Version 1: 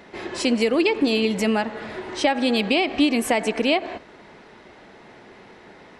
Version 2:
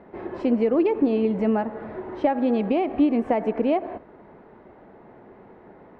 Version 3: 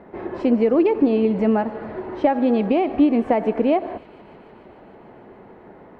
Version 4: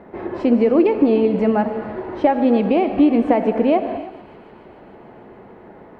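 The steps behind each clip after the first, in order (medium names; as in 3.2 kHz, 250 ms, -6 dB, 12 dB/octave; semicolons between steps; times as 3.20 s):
low-pass 1 kHz 12 dB/octave
feedback echo behind a high-pass 148 ms, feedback 84%, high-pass 3.4 kHz, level -15 dB; trim +3.5 dB
gated-style reverb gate 340 ms flat, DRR 10 dB; trim +2 dB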